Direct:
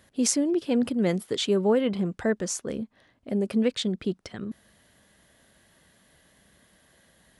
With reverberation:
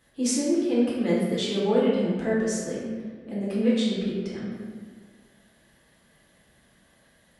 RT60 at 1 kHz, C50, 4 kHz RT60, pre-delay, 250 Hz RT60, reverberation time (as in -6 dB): 1.6 s, -1.0 dB, 1.0 s, 3 ms, 1.9 s, 1.7 s